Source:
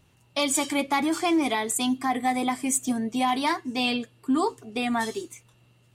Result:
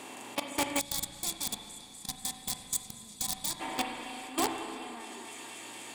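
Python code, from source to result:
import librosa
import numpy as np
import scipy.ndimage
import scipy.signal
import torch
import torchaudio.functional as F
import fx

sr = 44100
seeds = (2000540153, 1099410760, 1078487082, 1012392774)

y = fx.bin_compress(x, sr, power=0.4)
y = scipy.signal.sosfilt(scipy.signal.butter(2, 53.0, 'highpass', fs=sr, output='sos'), y)
y = fx.low_shelf(y, sr, hz=180.0, db=-8.0)
y = fx.echo_thinned(y, sr, ms=244, feedback_pct=79, hz=1000.0, wet_db=-4.5)
y = fx.level_steps(y, sr, step_db=19)
y = (np.mod(10.0 ** (11.0 / 20.0) * y + 1.0, 2.0) - 1.0) / 10.0 ** (11.0 / 20.0)
y = fx.rev_spring(y, sr, rt60_s=2.4, pass_ms=(34, 42), chirp_ms=65, drr_db=4.0)
y = fx.spec_box(y, sr, start_s=0.79, length_s=2.82, low_hz=230.0, high_hz=3300.0, gain_db=-16)
y = F.gain(torch.from_numpy(y), -8.0).numpy()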